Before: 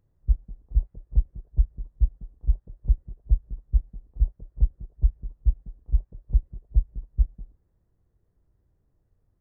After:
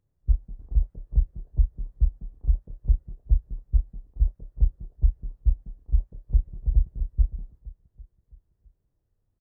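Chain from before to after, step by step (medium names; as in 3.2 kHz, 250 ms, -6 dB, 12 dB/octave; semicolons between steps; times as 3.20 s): gate -52 dBFS, range -7 dB; doubling 29 ms -9 dB; 0.59–2.78 s: three bands compressed up and down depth 40%; 6.14–6.55 s: echo throw 330 ms, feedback 55%, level -4.5 dB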